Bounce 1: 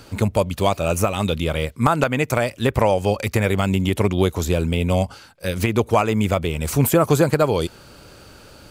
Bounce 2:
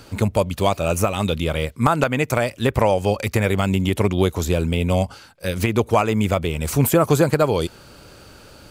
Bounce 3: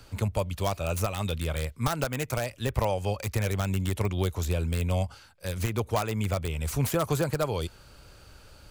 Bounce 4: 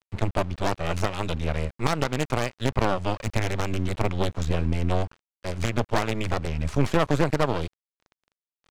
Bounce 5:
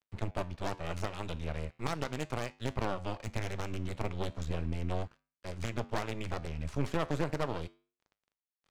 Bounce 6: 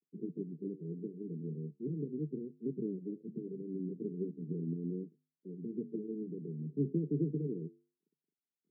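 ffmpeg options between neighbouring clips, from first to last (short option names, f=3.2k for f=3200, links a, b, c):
-af anull
-filter_complex "[0:a]lowshelf=f=86:g=10.5,acrossover=split=110|1100[a][b][c];[c]aeval=exprs='(mod(7.94*val(0)+1,2)-1)/7.94':c=same[d];[a][b][d]amix=inputs=3:normalize=0,equalizer=f=260:t=o:w=2.1:g=-6,volume=-8dB"
-af "aeval=exprs='0.266*(cos(1*acos(clip(val(0)/0.266,-1,1)))-cos(1*PI/2))+0.075*(cos(6*acos(clip(val(0)/0.266,-1,1)))-cos(6*PI/2))':c=same,aeval=exprs='val(0)*gte(abs(val(0)),0.01)':c=same,adynamicsmooth=sensitivity=2:basefreq=3.9k,volume=1.5dB"
-af "flanger=delay=9.7:depth=3.5:regen=-84:speed=0.37:shape=sinusoidal,volume=-6dB"
-af "asuperpass=centerf=250:order=20:qfactor=0.84,volume=3dB"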